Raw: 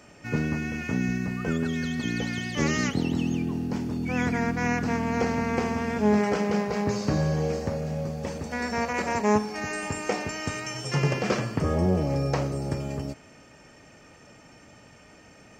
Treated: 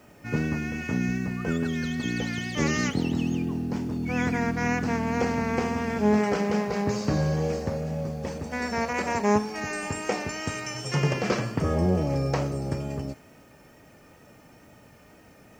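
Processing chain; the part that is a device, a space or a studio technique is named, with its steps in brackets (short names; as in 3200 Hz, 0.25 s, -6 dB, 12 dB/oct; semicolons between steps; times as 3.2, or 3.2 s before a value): plain cassette with noise reduction switched in (mismatched tape noise reduction decoder only; wow and flutter 26 cents; white noise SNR 39 dB)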